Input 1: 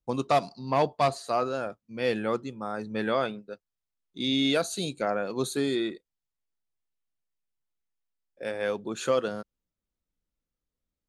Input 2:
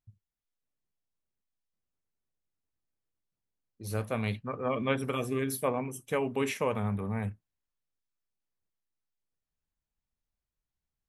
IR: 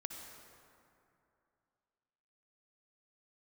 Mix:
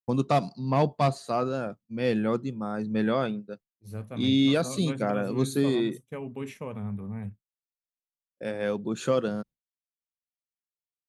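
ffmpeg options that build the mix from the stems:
-filter_complex "[0:a]volume=-2.5dB[a];[1:a]volume=-11dB[b];[a][b]amix=inputs=2:normalize=0,agate=range=-33dB:threshold=-46dB:ratio=3:detection=peak,equalizer=f=160:t=o:w=1.9:g=11.5"

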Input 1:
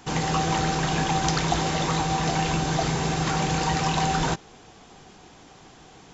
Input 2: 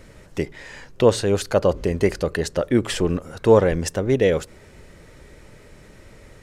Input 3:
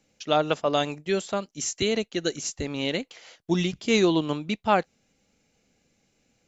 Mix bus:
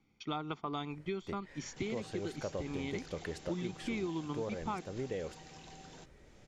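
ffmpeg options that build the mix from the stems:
-filter_complex "[0:a]acompressor=threshold=-43dB:ratio=2,highpass=190,equalizer=f=1.1k:t=o:w=1.2:g=-9,adelay=1700,volume=-13.5dB[a];[1:a]adelay=900,volume=-14dB[b];[2:a]lowpass=4.3k,equalizer=f=370:t=o:w=0.43:g=4.5,aecho=1:1:0.9:0.82,volume=-6dB[c];[b][c]amix=inputs=2:normalize=0,highshelf=f=4.4k:g=-8.5,acompressor=threshold=-35dB:ratio=6,volume=0dB[d];[a][d]amix=inputs=2:normalize=0"

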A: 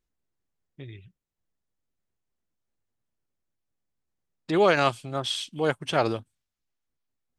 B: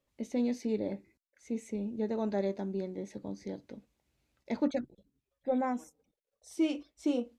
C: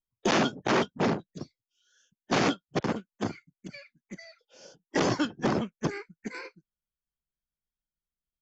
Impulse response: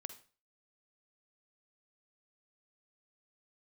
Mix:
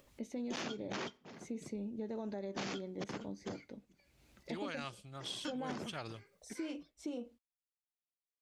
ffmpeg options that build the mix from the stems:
-filter_complex "[0:a]equalizer=f=500:w=0.41:g=-11,volume=-12dB,asplit=2[a][b];[b]volume=-14dB[c];[1:a]alimiter=level_in=3dB:limit=-24dB:level=0:latency=1:release=62,volume=-3dB,acompressor=mode=upward:threshold=-48dB:ratio=2.5,volume=-3.5dB,asplit=2[d][e];[2:a]adynamicequalizer=threshold=0.00891:dfrequency=1900:dqfactor=0.7:tfrequency=1900:tqfactor=0.7:attack=5:release=100:ratio=0.375:range=3.5:mode=boostabove:tftype=highshelf,adelay=250,volume=-14dB,asplit=2[f][g];[g]volume=-11.5dB[h];[e]apad=whole_len=382294[i];[f][i]sidechaingate=range=-33dB:threshold=-60dB:ratio=16:detection=peak[j];[3:a]atrim=start_sample=2205[k];[c][h]amix=inputs=2:normalize=0[l];[l][k]afir=irnorm=-1:irlink=0[m];[a][d][j][m]amix=inputs=4:normalize=0,acompressor=threshold=-37dB:ratio=6"

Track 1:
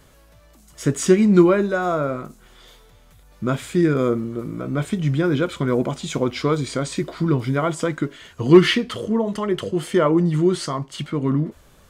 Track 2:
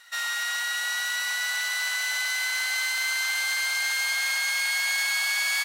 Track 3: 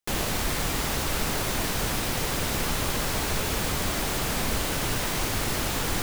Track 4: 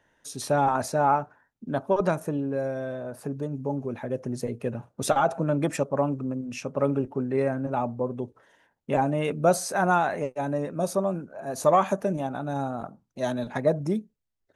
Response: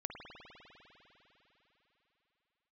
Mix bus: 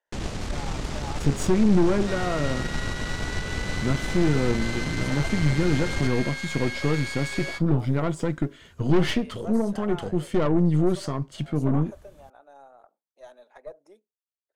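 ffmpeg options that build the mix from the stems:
-filter_complex "[0:a]adelay=400,volume=-5.5dB[a];[1:a]lowpass=9.1k,aemphasis=mode=reproduction:type=cd,adelay=1950,volume=-4dB[b];[2:a]lowpass=f=7.6k:w=0.5412,lowpass=f=7.6k:w=1.3066,adelay=50,volume=-5dB[c];[3:a]highpass=f=480:w=0.5412,highpass=f=480:w=1.3066,volume=-16dB[d];[a][b][c][d]amix=inputs=4:normalize=0,aeval=exprs='(tanh(12.6*val(0)+0.65)-tanh(0.65))/12.6':c=same,lowshelf=f=390:g=9.5"

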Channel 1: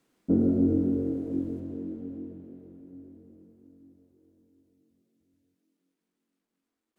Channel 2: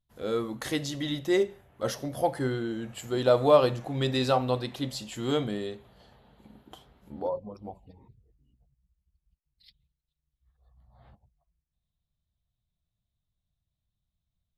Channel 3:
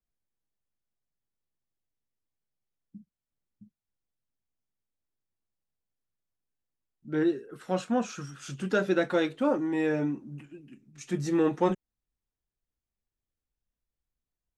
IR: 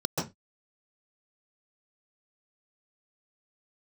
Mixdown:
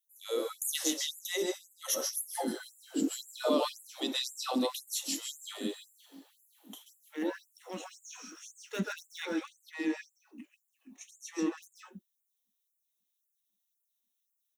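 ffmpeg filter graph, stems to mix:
-filter_complex "[0:a]adelay=2150,volume=-2.5dB,asplit=2[a][b];[b]volume=-3.5dB[c];[1:a]highshelf=f=7.1k:g=7,volume=-9dB,asplit=3[d][e][f];[e]volume=-8.5dB[g];[f]volume=-17.5dB[h];[2:a]equalizer=f=125:t=o:w=1:g=10,equalizer=f=250:t=o:w=1:g=3,equalizer=f=500:t=o:w=1:g=-3,equalizer=f=1k:t=o:w=1:g=3,equalizer=f=2k:t=o:w=1:g=8,aeval=exprs='0.2*(cos(1*acos(clip(val(0)/0.2,-1,1)))-cos(1*PI/2))+0.00708*(cos(7*acos(clip(val(0)/0.2,-1,1)))-cos(7*PI/2))':c=same,volume=-16.5dB,asplit=2[i][j];[j]volume=-6.5dB[k];[a][d]amix=inputs=2:normalize=0,asubboost=boost=9.5:cutoff=130,acompressor=threshold=-32dB:ratio=6,volume=0dB[l];[3:a]atrim=start_sample=2205[m];[g][k]amix=inputs=2:normalize=0[n];[n][m]afir=irnorm=-1:irlink=0[o];[c][h]amix=inputs=2:normalize=0,aecho=0:1:153|306|459|612|765|918|1071|1224:1|0.56|0.314|0.176|0.0983|0.0551|0.0308|0.0173[p];[i][l][o][p]amix=inputs=4:normalize=0,asubboost=boost=10:cutoff=150,crystalizer=i=5.5:c=0,afftfilt=real='re*gte(b*sr/1024,210*pow(7000/210,0.5+0.5*sin(2*PI*1.9*pts/sr)))':imag='im*gte(b*sr/1024,210*pow(7000/210,0.5+0.5*sin(2*PI*1.9*pts/sr)))':win_size=1024:overlap=0.75"

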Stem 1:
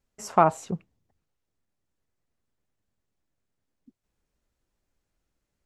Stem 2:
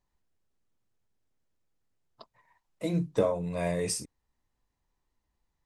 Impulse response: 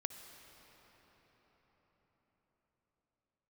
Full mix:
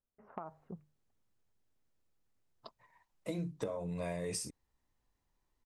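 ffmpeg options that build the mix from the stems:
-filter_complex "[0:a]lowpass=f=1.6k:w=0.5412,lowpass=f=1.6k:w=1.3066,bandreject=f=50:t=h:w=6,bandreject=f=100:t=h:w=6,bandreject=f=150:t=h:w=6,acompressor=threshold=-25dB:ratio=10,volume=-14dB[a];[1:a]acompressor=threshold=-28dB:ratio=6,adelay=450,volume=-1dB[b];[a][b]amix=inputs=2:normalize=0,acompressor=threshold=-38dB:ratio=2"

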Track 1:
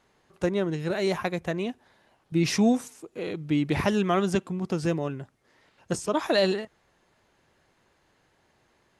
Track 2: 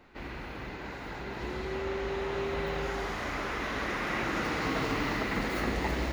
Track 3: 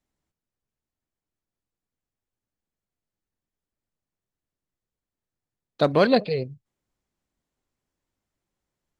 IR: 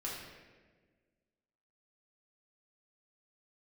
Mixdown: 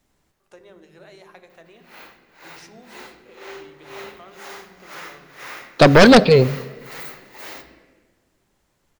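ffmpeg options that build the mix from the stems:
-filter_complex "[0:a]acompressor=threshold=-36dB:ratio=2,adelay=100,volume=-11.5dB,asplit=2[a][b];[b]volume=-8dB[c];[1:a]aemphasis=mode=production:type=bsi,aeval=exprs='val(0)*pow(10,-23*(0.5-0.5*cos(2*PI*2*n/s))/20)':c=same,adelay=1500,volume=-0.5dB,asplit=2[d][e];[e]volume=-8dB[f];[2:a]aeval=exprs='0.473*sin(PI/2*2.82*val(0)/0.473)':c=same,volume=1.5dB,asplit=2[g][h];[h]volume=-18dB[i];[a][d]amix=inputs=2:normalize=0,highpass=400,alimiter=level_in=4.5dB:limit=-24dB:level=0:latency=1:release=54,volume=-4.5dB,volume=0dB[j];[3:a]atrim=start_sample=2205[k];[c][f][i]amix=inputs=3:normalize=0[l];[l][k]afir=irnorm=-1:irlink=0[m];[g][j][m]amix=inputs=3:normalize=0"

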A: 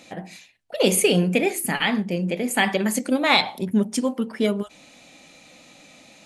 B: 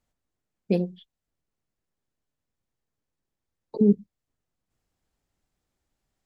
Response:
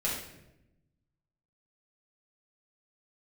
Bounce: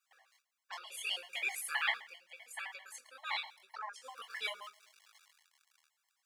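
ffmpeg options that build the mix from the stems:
-filter_complex "[0:a]dynaudnorm=f=310:g=9:m=6.5dB,aeval=exprs='val(0)*gte(abs(val(0)),0.0126)':c=same,highshelf=f=8.2k:g=-9,volume=9dB,afade=t=in:st=0.65:d=0.21:silence=0.251189,afade=t=out:st=1.9:d=0.28:silence=0.298538,afade=t=in:st=3.73:d=0.34:silence=0.237137,asplit=2[a][b];[b]volume=-21.5dB[c];[1:a]equalizer=f=200:w=0.78:g=-10,acompressor=threshold=-33dB:ratio=2.5,aeval=exprs='0.0531*sin(PI/2*2.82*val(0)/0.0531)':c=same,volume=-3dB,asplit=2[d][e];[e]apad=whole_len=275708[f];[a][f]sidechaincompress=threshold=-55dB:ratio=20:attack=26:release=107[g];[2:a]atrim=start_sample=2205[h];[c][h]afir=irnorm=-1:irlink=0[i];[g][d][i]amix=inputs=3:normalize=0,highpass=f=1k:w=0.5412,highpass=f=1k:w=1.3066,flanger=delay=18.5:depth=7.9:speed=0.77,afftfilt=real='re*gt(sin(2*PI*7.7*pts/sr)*(1-2*mod(floor(b*sr/1024/560),2)),0)':imag='im*gt(sin(2*PI*7.7*pts/sr)*(1-2*mod(floor(b*sr/1024/560),2)),0)':win_size=1024:overlap=0.75"

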